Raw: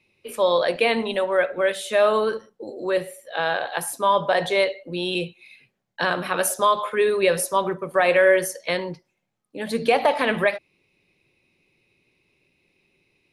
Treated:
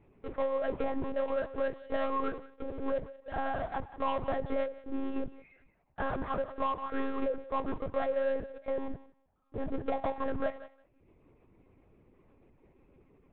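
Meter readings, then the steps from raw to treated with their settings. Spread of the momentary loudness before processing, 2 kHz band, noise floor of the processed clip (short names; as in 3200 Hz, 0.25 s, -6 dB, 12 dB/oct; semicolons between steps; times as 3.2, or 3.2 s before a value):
10 LU, -19.0 dB, -70 dBFS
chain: octaver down 2 oct, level -2 dB; reverb removal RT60 0.68 s; LPF 1300 Hz 24 dB/oct; compressor, threshold -23 dBFS, peak gain reduction 9 dB; power-law curve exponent 0.7; thinning echo 0.174 s, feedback 17%, high-pass 450 Hz, level -14.5 dB; monotone LPC vocoder at 8 kHz 270 Hz; gain -7.5 dB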